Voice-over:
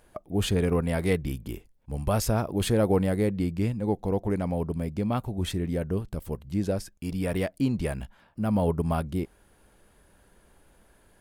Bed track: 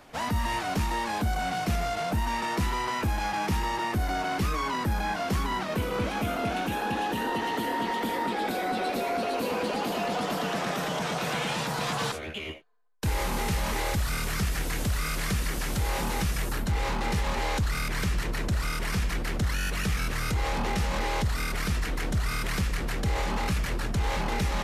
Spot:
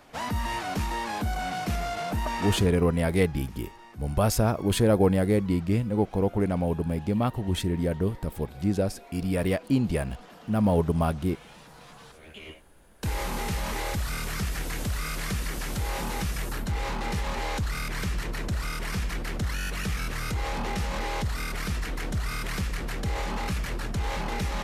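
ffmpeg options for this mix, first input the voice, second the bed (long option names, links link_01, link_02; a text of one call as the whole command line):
ffmpeg -i stem1.wav -i stem2.wav -filter_complex "[0:a]adelay=2100,volume=2dB[link_01];[1:a]volume=16.5dB,afade=type=out:start_time=2.48:duration=0.24:silence=0.11885,afade=type=in:start_time=12.12:duration=0.67:silence=0.125893[link_02];[link_01][link_02]amix=inputs=2:normalize=0" out.wav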